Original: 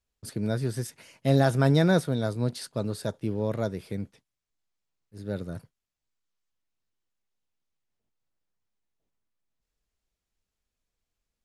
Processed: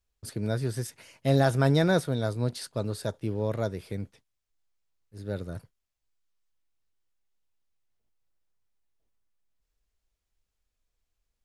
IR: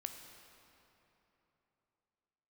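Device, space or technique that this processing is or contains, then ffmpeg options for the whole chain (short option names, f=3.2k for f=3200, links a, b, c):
low shelf boost with a cut just above: -af "lowshelf=f=73:g=7,equalizer=f=190:t=o:w=1.2:g=-4.5"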